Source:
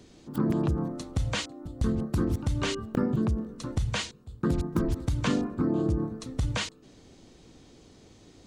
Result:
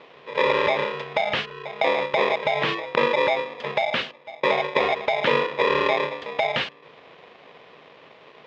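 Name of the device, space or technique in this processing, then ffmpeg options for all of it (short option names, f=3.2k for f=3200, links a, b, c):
ring modulator pedal into a guitar cabinet: -af "aeval=exprs='val(0)*sgn(sin(2*PI*730*n/s))':c=same,highpass=110,equalizer=f=150:t=q:w=4:g=8,equalizer=f=310:t=q:w=4:g=-3,equalizer=f=490:t=q:w=4:g=4,equalizer=f=870:t=q:w=4:g=-5,equalizer=f=1.7k:t=q:w=4:g=4,equalizer=f=2.9k:t=q:w=4:g=6,lowpass=f=3.6k:w=0.5412,lowpass=f=3.6k:w=1.3066,volume=5dB"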